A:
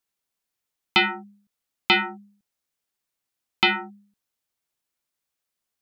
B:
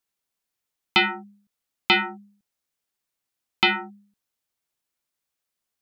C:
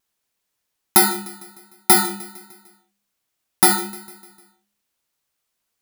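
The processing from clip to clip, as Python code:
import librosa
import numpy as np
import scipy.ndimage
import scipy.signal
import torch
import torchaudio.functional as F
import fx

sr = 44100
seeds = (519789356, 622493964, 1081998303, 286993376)

y1 = x
y2 = fx.bit_reversed(y1, sr, seeds[0], block=16)
y2 = fx.echo_feedback(y2, sr, ms=151, feedback_pct=55, wet_db=-18.5)
y2 = fx.vibrato(y2, sr, rate_hz=1.3, depth_cents=19.0)
y2 = y2 * 10.0 ** (6.5 / 20.0)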